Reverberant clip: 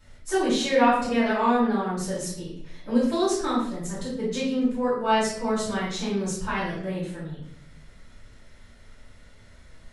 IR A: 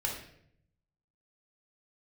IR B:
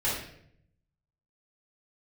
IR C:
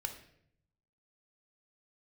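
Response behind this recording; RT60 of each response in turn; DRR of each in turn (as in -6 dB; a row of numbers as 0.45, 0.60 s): B; 0.70, 0.70, 0.70 s; -2.0, -10.5, 5.0 dB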